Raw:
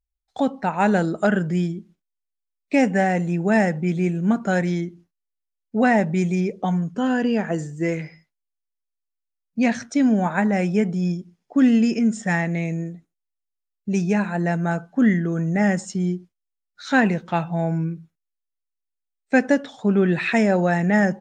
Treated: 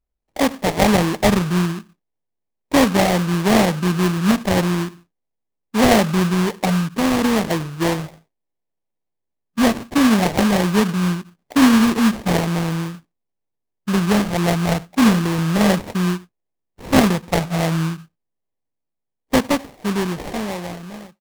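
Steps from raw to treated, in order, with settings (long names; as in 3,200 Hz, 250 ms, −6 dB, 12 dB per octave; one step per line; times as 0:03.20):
fade-out on the ending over 2.63 s
sample-rate reduction 1,400 Hz, jitter 20%
highs frequency-modulated by the lows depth 0.13 ms
level +3.5 dB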